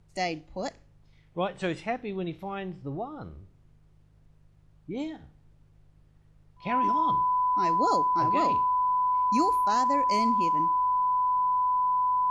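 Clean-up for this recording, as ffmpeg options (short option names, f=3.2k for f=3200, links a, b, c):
-af "bandreject=f=51.2:t=h:w=4,bandreject=f=102.4:t=h:w=4,bandreject=f=153.6:t=h:w=4,bandreject=f=1k:w=30,agate=range=-21dB:threshold=-51dB"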